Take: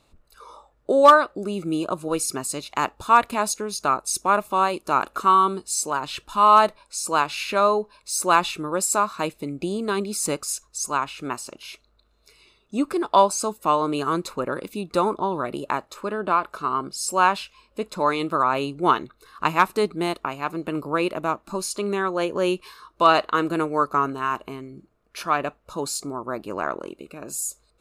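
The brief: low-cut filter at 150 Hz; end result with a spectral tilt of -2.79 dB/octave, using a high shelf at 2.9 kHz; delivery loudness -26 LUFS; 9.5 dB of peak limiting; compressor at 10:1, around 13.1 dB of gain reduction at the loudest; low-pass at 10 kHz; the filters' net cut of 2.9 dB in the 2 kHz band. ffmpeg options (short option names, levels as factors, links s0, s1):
-af "highpass=150,lowpass=10000,equalizer=f=2000:t=o:g=-7.5,highshelf=f=2900:g=7.5,acompressor=threshold=0.0794:ratio=10,volume=1.58,alimiter=limit=0.188:level=0:latency=1"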